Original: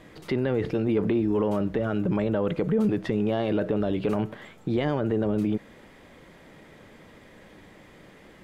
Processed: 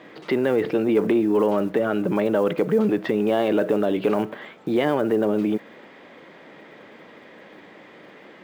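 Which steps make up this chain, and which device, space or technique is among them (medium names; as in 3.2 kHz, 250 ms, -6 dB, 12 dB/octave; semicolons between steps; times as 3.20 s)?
early digital voice recorder (band-pass 260–3800 Hz; block-companded coder 7-bit); trim +6.5 dB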